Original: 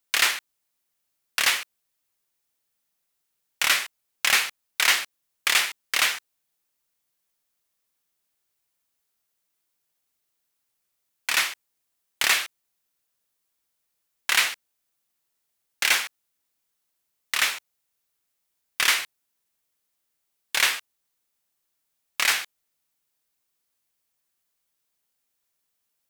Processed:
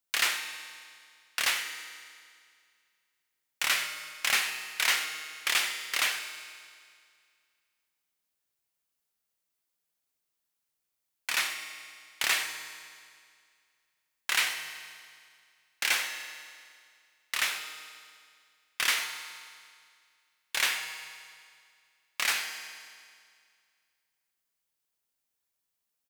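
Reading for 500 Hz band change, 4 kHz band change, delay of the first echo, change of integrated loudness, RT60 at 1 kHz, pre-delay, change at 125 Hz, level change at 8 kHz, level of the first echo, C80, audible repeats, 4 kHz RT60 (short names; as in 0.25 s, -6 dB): -5.5 dB, -5.5 dB, 94 ms, -6.5 dB, 2.1 s, 6 ms, n/a, -5.5 dB, -15.5 dB, 8.0 dB, 1, 2.0 s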